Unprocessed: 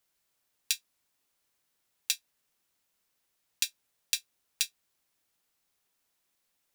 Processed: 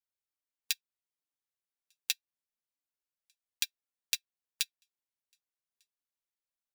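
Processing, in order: echo 1.198 s -23 dB; flange 0.3 Hz, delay 1.1 ms, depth 7.4 ms, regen +56%; dynamic EQ 8200 Hz, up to -8 dB, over -51 dBFS, Q 0.83; upward expander 2.5:1, over -46 dBFS; gain +5 dB

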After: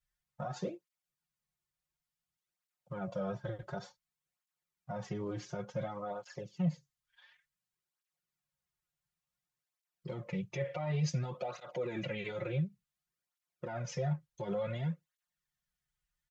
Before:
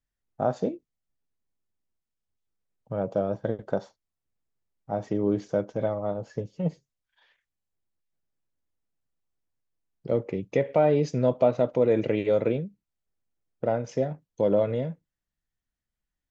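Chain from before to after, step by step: EQ curve 150 Hz 0 dB, 260 Hz -12 dB, 1200 Hz +5 dB; limiter -25.5 dBFS, peak gain reduction 13.5 dB; low shelf 140 Hz +5 dB; comb 5.6 ms, depth 100%; tape flanging out of phase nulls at 0.56 Hz, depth 4.8 ms; gain -3.5 dB

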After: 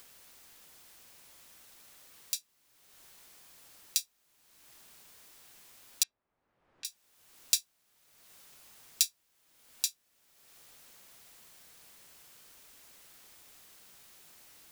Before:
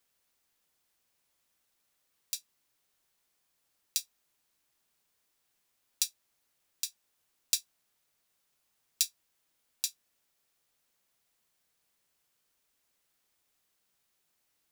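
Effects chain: 6.03–6.85 LPF 1200 Hz 12 dB/oct; in parallel at -1 dB: upward compressor, threshold -33 dBFS; on the sum: gain -3.5 dB

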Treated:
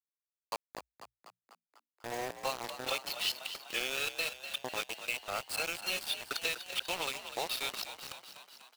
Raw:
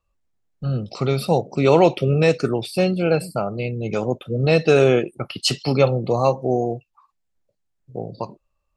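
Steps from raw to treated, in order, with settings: whole clip reversed; HPF 1100 Hz 12 dB/oct; expander -44 dBFS; bell 3300 Hz +12 dB 0.91 oct; compressor 12:1, threshold -31 dBFS, peak gain reduction 22.5 dB; sample gate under -33 dBFS; frequency-shifting echo 0.247 s, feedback 63%, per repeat +58 Hz, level -11 dB

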